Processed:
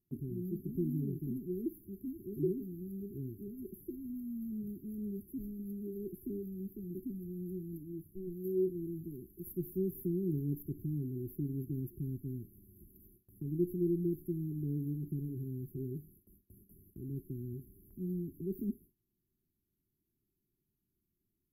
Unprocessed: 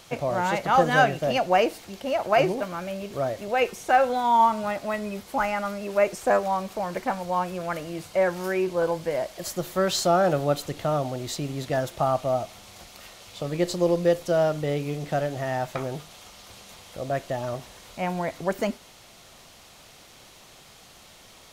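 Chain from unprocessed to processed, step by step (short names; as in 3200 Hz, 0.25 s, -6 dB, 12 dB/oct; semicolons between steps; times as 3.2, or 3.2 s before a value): 7.78–8.45 tube stage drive 20 dB, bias 0.7; brick-wall FIR band-stop 410–11000 Hz; gate with hold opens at -45 dBFS; gain -5.5 dB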